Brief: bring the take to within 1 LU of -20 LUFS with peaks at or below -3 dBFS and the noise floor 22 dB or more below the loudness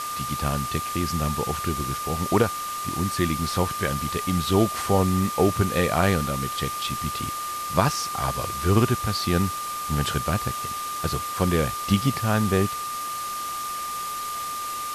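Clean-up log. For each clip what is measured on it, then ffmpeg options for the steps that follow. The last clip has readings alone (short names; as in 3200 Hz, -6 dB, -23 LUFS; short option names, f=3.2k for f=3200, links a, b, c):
steady tone 1200 Hz; tone level -29 dBFS; noise floor -31 dBFS; noise floor target -47 dBFS; loudness -25.0 LUFS; peak -6.0 dBFS; loudness target -20.0 LUFS
-> -af "bandreject=f=1.2k:w=30"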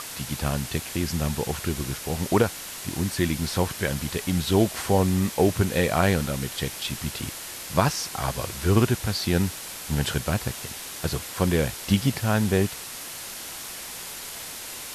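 steady tone none; noise floor -37 dBFS; noise floor target -48 dBFS
-> -af "afftdn=nr=11:nf=-37"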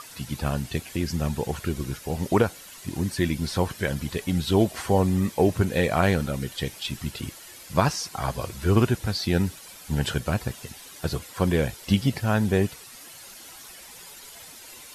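noise floor -45 dBFS; noise floor target -48 dBFS
-> -af "afftdn=nr=6:nf=-45"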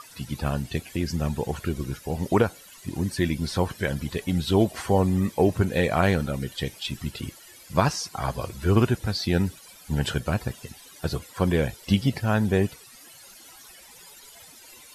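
noise floor -49 dBFS; loudness -26.0 LUFS; peak -6.5 dBFS; loudness target -20.0 LUFS
-> -af "volume=6dB,alimiter=limit=-3dB:level=0:latency=1"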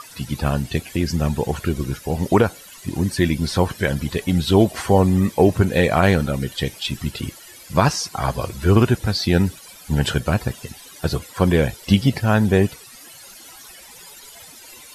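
loudness -20.0 LUFS; peak -3.0 dBFS; noise floor -43 dBFS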